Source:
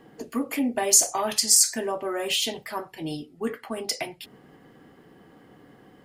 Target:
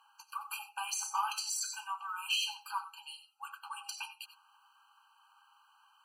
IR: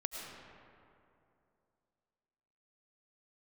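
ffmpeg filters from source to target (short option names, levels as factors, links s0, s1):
-filter_complex "[0:a]acrossover=split=3000[s0][s1];[s1]acompressor=threshold=0.0316:ratio=4:attack=1:release=60[s2];[s0][s2]amix=inputs=2:normalize=0[s3];[1:a]atrim=start_sample=2205,atrim=end_sample=4410[s4];[s3][s4]afir=irnorm=-1:irlink=0,afftfilt=real='re*eq(mod(floor(b*sr/1024/800),2),1)':imag='im*eq(mod(floor(b*sr/1024/800),2),1)':win_size=1024:overlap=0.75"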